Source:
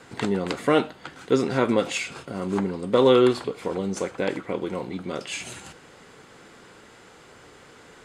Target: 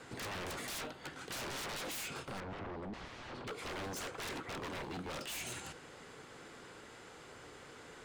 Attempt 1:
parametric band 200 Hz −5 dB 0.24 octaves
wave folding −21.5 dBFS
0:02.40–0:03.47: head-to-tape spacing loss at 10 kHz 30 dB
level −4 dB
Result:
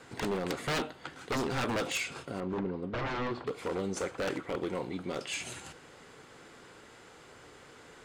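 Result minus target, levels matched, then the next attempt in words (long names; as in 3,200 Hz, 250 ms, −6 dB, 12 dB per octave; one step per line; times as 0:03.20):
wave folding: distortion −12 dB
parametric band 200 Hz −5 dB 0.24 octaves
wave folding −33 dBFS
0:02.40–0:03.47: head-to-tape spacing loss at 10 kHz 30 dB
level −4 dB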